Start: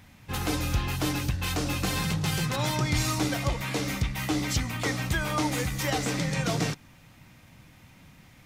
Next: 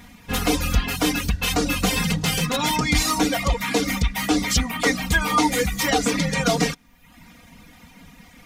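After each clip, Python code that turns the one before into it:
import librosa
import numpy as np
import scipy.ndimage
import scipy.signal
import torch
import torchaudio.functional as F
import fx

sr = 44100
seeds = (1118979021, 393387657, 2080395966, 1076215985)

y = fx.dereverb_blind(x, sr, rt60_s=0.77)
y = y + 0.9 * np.pad(y, (int(4.2 * sr / 1000.0), 0))[:len(y)]
y = y * 10.0 ** (6.5 / 20.0)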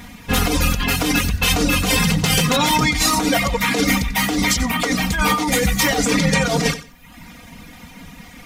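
y = fx.over_compress(x, sr, threshold_db=-23.0, ratio=-1.0)
y = fx.echo_feedback(y, sr, ms=91, feedback_pct=21, wet_db=-14.5)
y = y * 10.0 ** (5.5 / 20.0)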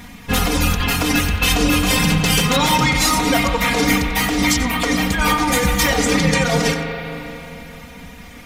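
y = fx.rev_spring(x, sr, rt60_s=3.5, pass_ms=(37, 44), chirp_ms=25, drr_db=4.5)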